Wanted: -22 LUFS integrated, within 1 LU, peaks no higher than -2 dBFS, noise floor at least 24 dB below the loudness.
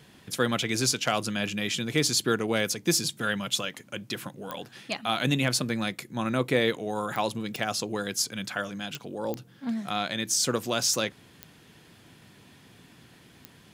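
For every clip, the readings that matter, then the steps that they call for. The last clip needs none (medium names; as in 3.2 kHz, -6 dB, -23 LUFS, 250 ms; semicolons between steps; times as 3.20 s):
clicks found 8; loudness -28.0 LUFS; peak level -9.5 dBFS; loudness target -22.0 LUFS
-> de-click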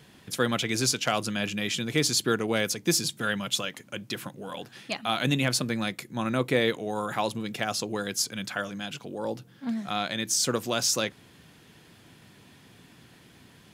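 clicks found 0; loudness -28.0 LUFS; peak level -9.5 dBFS; loudness target -22.0 LUFS
-> trim +6 dB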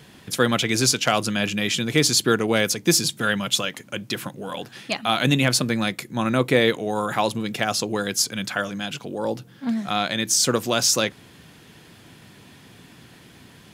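loudness -22.0 LUFS; peak level -3.5 dBFS; noise floor -49 dBFS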